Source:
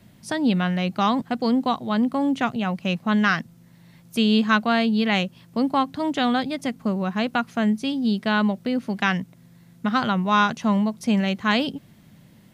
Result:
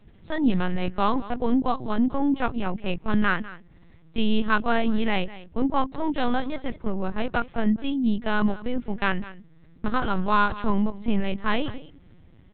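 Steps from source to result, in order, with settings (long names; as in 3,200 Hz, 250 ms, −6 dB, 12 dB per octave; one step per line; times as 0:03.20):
high-shelf EQ 2,100 Hz −5.5 dB
single-tap delay 201 ms −17 dB
linear-prediction vocoder at 8 kHz pitch kept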